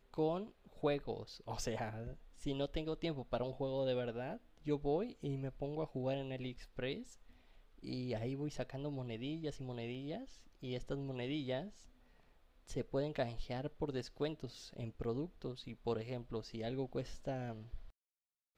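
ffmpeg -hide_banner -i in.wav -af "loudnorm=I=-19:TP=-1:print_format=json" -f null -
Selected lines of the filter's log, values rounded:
"input_i" : "-42.2",
"input_tp" : "-24.0",
"input_lra" : "4.4",
"input_thresh" : "-52.6",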